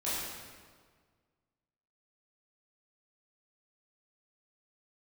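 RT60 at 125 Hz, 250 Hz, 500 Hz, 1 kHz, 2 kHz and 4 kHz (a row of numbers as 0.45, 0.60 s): 2.0, 1.8, 1.7, 1.6, 1.4, 1.3 s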